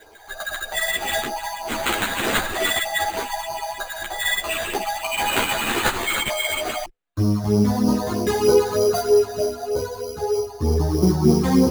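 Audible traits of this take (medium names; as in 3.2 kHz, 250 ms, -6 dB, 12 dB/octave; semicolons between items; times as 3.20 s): phasing stages 8, 3.2 Hz, lowest notch 320–2300 Hz; aliases and images of a low sample rate 5.4 kHz, jitter 0%; a shimmering, thickened sound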